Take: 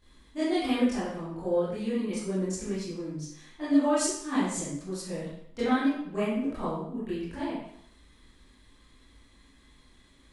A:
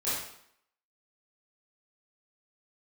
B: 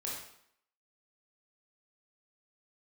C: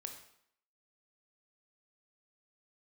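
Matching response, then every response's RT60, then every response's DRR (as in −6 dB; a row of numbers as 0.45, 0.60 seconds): A; 0.70, 0.70, 0.65 seconds; −12.5, −4.5, 4.5 decibels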